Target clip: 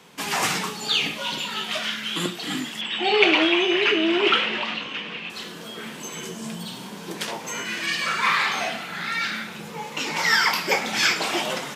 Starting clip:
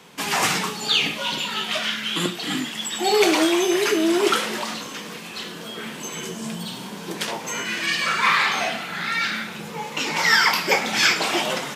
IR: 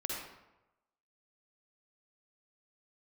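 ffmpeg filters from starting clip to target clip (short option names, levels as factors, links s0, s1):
-filter_complex "[0:a]asettb=1/sr,asplit=3[s0][s1][s2];[s0]atrim=end=2.814[s3];[s1]atrim=start=2.81:end=5.3,asetpts=PTS-STARTPTS,afade=t=in:d=0.004:c=qsin,afade=t=out:st=2.486:d=0.004:c=qsin,lowpass=f=2800:t=q:w=3.6[s4];[s2]atrim=start=5.296[s5];[s3][s4]acrossfade=d=0.004:c1=hsin:c2=qsin[s6];[s6][s5]acrossfade=d=0.004:c1=qsin:c2=hsin,volume=0.75"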